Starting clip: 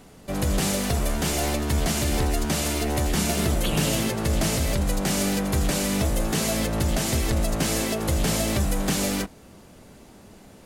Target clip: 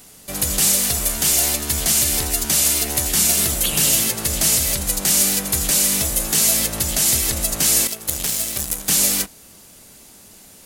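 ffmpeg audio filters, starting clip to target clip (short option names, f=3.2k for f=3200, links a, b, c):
-filter_complex "[0:a]asettb=1/sr,asplit=3[a][b][c];[a]atrim=end=7.874[d];[b]atrim=start=7.87:end=8.89,asetpts=PTS-STARTPTS,afade=t=in:d=0.004:c=qsin,afade=t=out:st=1.016:d=0.004:c=qsin,aeval=exprs='0.251*(cos(1*acos(clip(val(0)/0.251,-1,1)))-cos(1*PI/2))+0.0631*(cos(3*acos(clip(val(0)/0.251,-1,1)))-cos(3*PI/2))':c=same[e];[c]atrim=start=8.886[f];[d][e]acrossfade=d=0.004:c1=hsin:c2=qsin[g];[g][f]acrossfade=d=0.004:c1=qsin:c2=hsin,crystalizer=i=7:c=0,volume=-4.5dB"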